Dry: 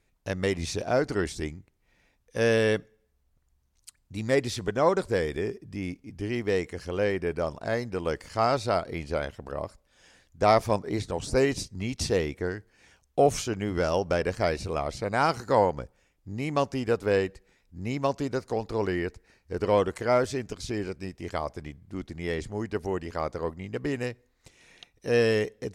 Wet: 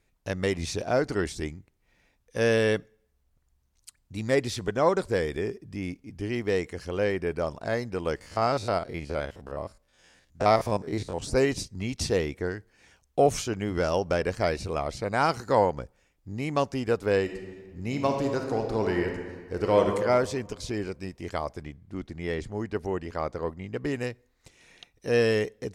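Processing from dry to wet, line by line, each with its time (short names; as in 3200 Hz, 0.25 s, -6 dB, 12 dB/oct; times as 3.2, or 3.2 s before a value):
8.16–11.22 stepped spectrum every 50 ms
17.21–19.87 reverb throw, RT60 1.6 s, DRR 3 dB
21.63–23.85 high shelf 4900 Hz -6 dB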